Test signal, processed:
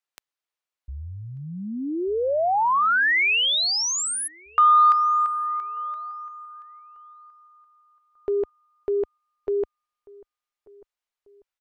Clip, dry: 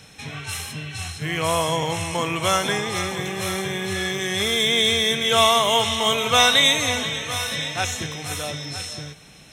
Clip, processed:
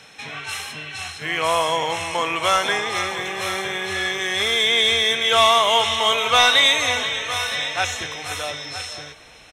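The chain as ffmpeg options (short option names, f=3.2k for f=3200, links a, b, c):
-filter_complex "[0:a]lowshelf=f=150:g=-8,asplit=2[a][b];[b]adelay=1191,lowpass=f=1.2k:p=1,volume=-23dB,asplit=2[c][d];[d]adelay=1191,lowpass=f=1.2k:p=1,volume=0.43,asplit=2[e][f];[f]adelay=1191,lowpass=f=1.2k:p=1,volume=0.43[g];[c][e][g]amix=inputs=3:normalize=0[h];[a][h]amix=inputs=2:normalize=0,asubboost=boost=10:cutoff=53,asplit=2[i][j];[j]highpass=f=720:p=1,volume=10dB,asoftclip=type=tanh:threshold=-1.5dB[k];[i][k]amix=inputs=2:normalize=0,lowpass=f=2.9k:p=1,volume=-6dB"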